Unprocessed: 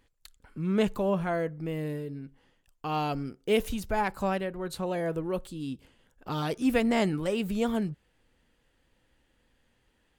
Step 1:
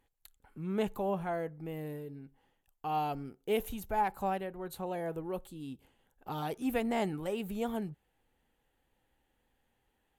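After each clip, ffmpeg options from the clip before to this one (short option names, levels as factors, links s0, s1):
-af "equalizer=f=400:t=o:w=0.33:g=3,equalizer=f=800:t=o:w=0.33:g=10,equalizer=f=5000:t=o:w=0.33:g=-7,equalizer=f=12500:t=o:w=0.33:g=12,volume=0.398"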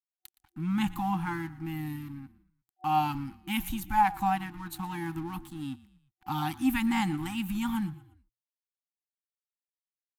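-filter_complex "[0:a]aeval=exprs='sgn(val(0))*max(abs(val(0))-0.00141,0)':c=same,asplit=4[s0][s1][s2][s3];[s1]adelay=117,afreqshift=-40,volume=0.112[s4];[s2]adelay=234,afreqshift=-80,volume=0.0495[s5];[s3]adelay=351,afreqshift=-120,volume=0.0216[s6];[s0][s4][s5][s6]amix=inputs=4:normalize=0,afftfilt=real='re*(1-between(b*sr/4096,350,750))':imag='im*(1-between(b*sr/4096,350,750))':win_size=4096:overlap=0.75,volume=2.37"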